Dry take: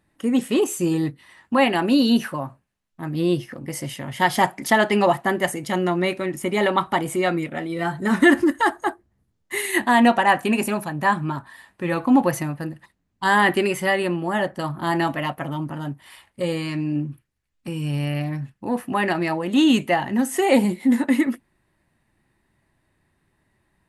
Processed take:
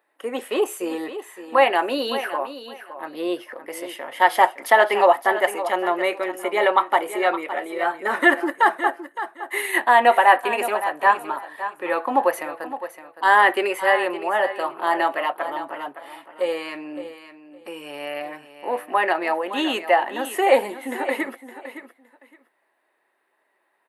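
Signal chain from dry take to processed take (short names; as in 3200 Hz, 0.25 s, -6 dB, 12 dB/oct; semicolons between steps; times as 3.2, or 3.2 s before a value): HPF 450 Hz 24 dB/oct; bell 6400 Hz -14 dB 1.7 oct; feedback echo 0.564 s, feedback 19%, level -12 dB; gain +4.5 dB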